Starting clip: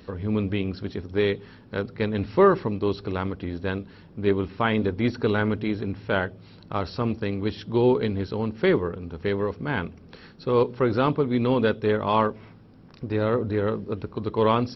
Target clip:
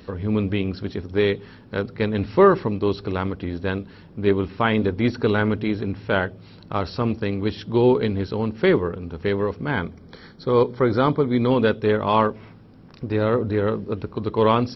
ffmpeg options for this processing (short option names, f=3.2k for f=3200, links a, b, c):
-filter_complex "[0:a]asettb=1/sr,asplit=3[a][b][c];[a]atrim=end=9.714[d];[b]atrim=start=9.71:end=11.51,asetpts=PTS-STARTPTS,afade=t=in:d=0.004:c=qsin,afade=t=out:st=1.796:d=0.004:c=qsin,asuperstop=centerf=2700:order=8:qfactor=5.5[e];[c]atrim=start=11.506[f];[d][e]acrossfade=d=0.004:c1=hsin:c2=qsin[g];[g][f]acrossfade=d=0.004:c1=qsin:c2=hsin,volume=3dB"